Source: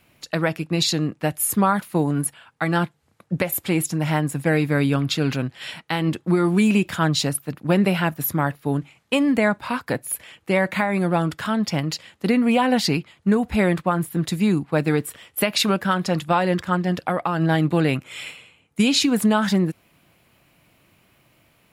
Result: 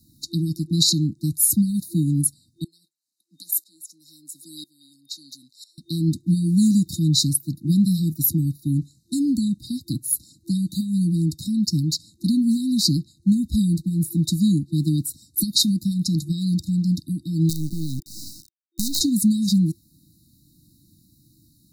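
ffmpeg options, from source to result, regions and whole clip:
ffmpeg -i in.wav -filter_complex "[0:a]asettb=1/sr,asplit=3[link_01][link_02][link_03];[link_01]atrim=end=2.644[link_04];[link_02]atrim=start=2.64:end=5.78,asetpts=PTS-STARTPTS,afade=type=in:duration=0.004:curve=qsin,afade=type=out:start_time=3.136:duration=0.004:curve=qsin,highpass=1100,aeval=exprs='val(0)*pow(10,-22*if(lt(mod(-1*n/s,1),2*abs(-1)/1000),1-mod(-1*n/s,1)/(2*abs(-1)/1000),(mod(-1*n/s,1)-2*abs(-1)/1000)/(1-2*abs(-1)/1000))/20)':channel_layout=same[link_05];[link_03]atrim=start=5.776[link_06];[link_04][link_05]acrossfade=duration=0.004:curve1=hsin:curve2=qsin[link_07];[link_07][link_06]acrossfade=duration=0.004:curve1=qsin:curve2=hsin,asettb=1/sr,asplit=3[link_08][link_09][link_10];[link_08]atrim=end=17.494[link_11];[link_09]atrim=start=17.49:end=19.01,asetpts=PTS-STARTPTS,afade=type=in:duration=0.004:curve=qsin,afade=type=out:start_time=1.516:duration=0.004:curve=qsin,acompressor=threshold=-22dB:ratio=4:attack=3.2:release=140:knee=1:detection=peak,acrusher=bits=4:dc=4:mix=0:aa=0.000001[link_12];[link_10]atrim=start=19.006[link_13];[link_11][link_12]acrossfade=duration=0.004:curve1=hsin:curve2=qsin[link_14];[link_14][link_13]acrossfade=duration=0.004:curve1=qsin:curve2=hsin,afftfilt=real='re*(1-between(b*sr/4096,340,3700))':imag='im*(1-between(b*sr/4096,340,3700))':win_size=4096:overlap=0.75,acrossover=split=200|3000[link_15][link_16][link_17];[link_16]acompressor=threshold=-47dB:ratio=1.5[link_18];[link_15][link_18][link_17]amix=inputs=3:normalize=0,volume=5dB" out.wav

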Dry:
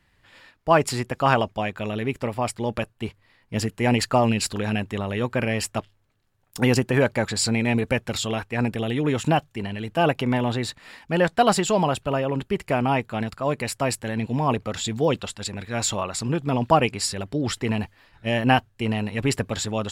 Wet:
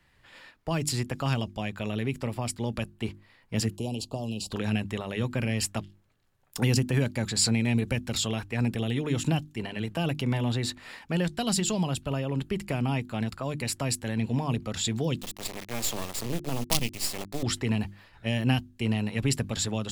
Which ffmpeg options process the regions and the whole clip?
ffmpeg -i in.wav -filter_complex "[0:a]asettb=1/sr,asplit=3[link_01][link_02][link_03];[link_01]atrim=end=3.764[link_04];[link_02]atrim=start=3.76:end=4.52,asetpts=PTS-STARTPTS,afade=type=in:duration=0.004:curve=qsin,afade=type=out:start_time=0.756:duration=0.004:curve=qsin,equalizer=frequency=910:width=6.9:gain=-8,acrossover=split=610|3100[link_05][link_06][link_07];[link_05]acompressor=threshold=-30dB:ratio=4[link_08];[link_06]acompressor=threshold=-36dB:ratio=4[link_09];[link_07]acompressor=threshold=-39dB:ratio=4[link_10];[link_08][link_09][link_10]amix=inputs=3:normalize=0,asuperstop=centerf=1700:order=8:qfactor=0.87[link_11];[link_03]atrim=start=4.516[link_12];[link_04][link_11]acrossfade=duration=0.004:curve1=hsin:curve2=qsin[link_13];[link_13][link_12]acrossfade=duration=0.004:curve1=qsin:curve2=hsin,asettb=1/sr,asplit=3[link_14][link_15][link_16];[link_14]atrim=end=15.214[link_17];[link_15]atrim=start=15.21:end=17.43,asetpts=PTS-STARTPTS,afade=type=in:duration=0.004:curve=qsin,afade=type=out:start_time=2.216:duration=0.004:curve=qsin,highpass=180,acrusher=bits=3:dc=4:mix=0:aa=0.000001,equalizer=frequency=1500:width_type=o:width=0.33:gain=-6.5[link_18];[link_16]atrim=start=17.426[link_19];[link_17][link_18]acrossfade=duration=0.004:curve1=hsin:curve2=qsin[link_20];[link_20][link_19]acrossfade=duration=0.004:curve1=qsin:curve2=hsin,bandreject=frequency=50:width_type=h:width=6,bandreject=frequency=100:width_type=h:width=6,bandreject=frequency=150:width_type=h:width=6,bandreject=frequency=200:width_type=h:width=6,bandreject=frequency=250:width_type=h:width=6,bandreject=frequency=300:width_type=h:width=6,bandreject=frequency=350:width_type=h:width=6,acrossover=split=260|3000[link_21][link_22][link_23];[link_22]acompressor=threshold=-34dB:ratio=6[link_24];[link_21][link_24][link_23]amix=inputs=3:normalize=0" out.wav

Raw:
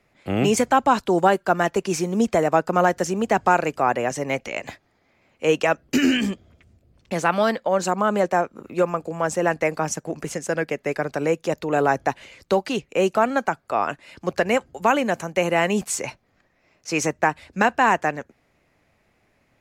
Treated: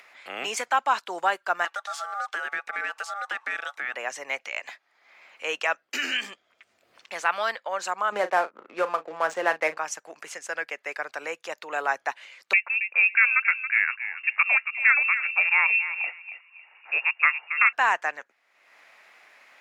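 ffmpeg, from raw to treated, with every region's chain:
ffmpeg -i in.wav -filter_complex "[0:a]asettb=1/sr,asplit=3[link_01][link_02][link_03];[link_01]atrim=end=1.654[link_04];[link_02]atrim=start=1.65:end=3.94,asetpts=PTS-STARTPTS,afade=type=in:duration=0.004:curve=qsin,afade=type=out:start_time=2.286:duration=0.004:curve=qsin,aeval=exprs='val(0)*sin(2*PI*1000*n/s)':channel_layout=same,acompressor=threshold=-26dB:ratio=2:attack=3.2:release=140:knee=1:detection=peak[link_05];[link_03]atrim=start=3.936[link_06];[link_04][link_05]acrossfade=duration=0.004:curve1=hsin:curve2=qsin[link_07];[link_07][link_06]acrossfade=duration=0.004:curve1=qsin:curve2=hsin,asettb=1/sr,asplit=3[link_08][link_09][link_10];[link_08]atrim=end=8.124[link_11];[link_09]atrim=start=8.12:end=9.78,asetpts=PTS-STARTPTS,afade=type=in:duration=0.004:curve=qsin,afade=type=out:start_time=1.656:duration=0.004:curve=qsin,equalizer=frequency=260:width=0.31:gain=8.5,adynamicsmooth=sensitivity=7.5:basefreq=1200,asplit=2[link_12][link_13];[link_13]adelay=38,volume=-13dB[link_14];[link_12][link_14]amix=inputs=2:normalize=0,atrim=end_sample=73206[link_15];[link_10]atrim=start=9.776[link_16];[link_11][link_15]acrossfade=duration=0.004:curve1=hsin:curve2=qsin[link_17];[link_17][link_16]acrossfade=duration=0.004:curve1=qsin:curve2=hsin,asettb=1/sr,asplit=3[link_18][link_19][link_20];[link_18]atrim=end=12.534[link_21];[link_19]atrim=start=12.53:end=17.73,asetpts=PTS-STARTPTS,afade=type=in:duration=0.004:curve=qsin,afade=type=out:start_time=5.196:duration=0.004:curve=qsin,asplit=2[link_22][link_23];[link_23]adelay=276,lowpass=frequency=990:poles=1,volume=-8dB,asplit=2[link_24][link_25];[link_25]adelay=276,lowpass=frequency=990:poles=1,volume=0.24,asplit=2[link_26][link_27];[link_27]adelay=276,lowpass=frequency=990:poles=1,volume=0.24[link_28];[link_22][link_24][link_26][link_28]amix=inputs=4:normalize=0,atrim=end_sample=229320,lowpass=frequency=2500:width_type=q:width=0.5098,lowpass=frequency=2500:width_type=q:width=0.6013,lowpass=frequency=2500:width_type=q:width=0.9,lowpass=frequency=2500:width_type=q:width=2.563,afreqshift=-2900[link_29];[link_20]atrim=start=17.726[link_30];[link_21][link_29]acrossfade=duration=0.004:curve1=hsin:curve2=qsin[link_31];[link_31][link_30]acrossfade=duration=0.004:curve1=qsin:curve2=hsin,highpass=1200,highshelf=frequency=4900:gain=-11,acompressor=mode=upward:threshold=-41dB:ratio=2.5,volume=1.5dB" out.wav

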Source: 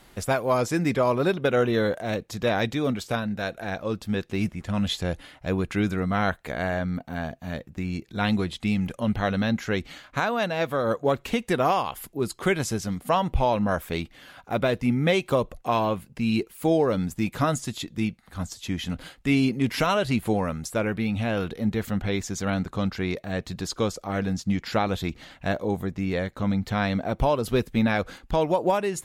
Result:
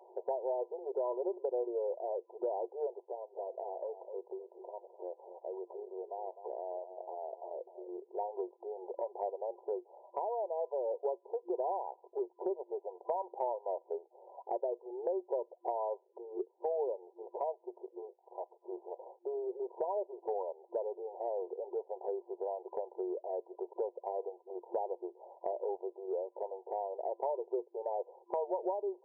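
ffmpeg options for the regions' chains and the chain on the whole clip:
ffmpeg -i in.wav -filter_complex "[0:a]asettb=1/sr,asplit=3[link_01][link_02][link_03];[link_01]atrim=end=3.014[link_04];[link_02]atrim=start=3.01:end=7.89,asetpts=PTS-STARTPTS,afade=type=in:duration=0.004:curve=qsin,afade=type=out:start_time=4.876:duration=0.004:curve=qsin,acompressor=threshold=-33dB:ratio=12:attack=3.2:release=140:knee=1:detection=peak,aecho=1:1:255:0.251,atrim=end_sample=215208[link_05];[link_03]atrim=start=7.886[link_06];[link_04][link_05]acrossfade=duration=0.004:curve1=hsin:curve2=qsin[link_07];[link_07][link_06]acrossfade=duration=0.004:curve1=qsin:curve2=hsin,afftfilt=real='re*between(b*sr/4096,350,1000)':imag='im*between(b*sr/4096,350,1000)':win_size=4096:overlap=0.75,equalizer=frequency=480:width_type=o:width=2.2:gain=2.5,acompressor=threshold=-38dB:ratio=3,volume=1dB" out.wav

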